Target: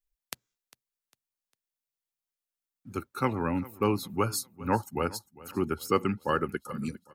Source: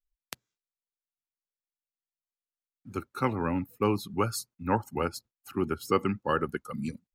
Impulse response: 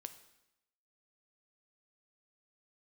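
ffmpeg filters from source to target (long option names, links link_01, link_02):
-filter_complex "[0:a]highshelf=frequency=7200:gain=5,asplit=2[link_01][link_02];[link_02]aecho=0:1:402|804|1206:0.1|0.039|0.0152[link_03];[link_01][link_03]amix=inputs=2:normalize=0"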